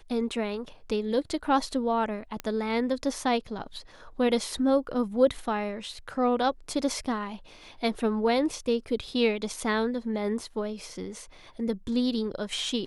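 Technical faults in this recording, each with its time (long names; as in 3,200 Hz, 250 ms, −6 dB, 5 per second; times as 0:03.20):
0:02.40: click −17 dBFS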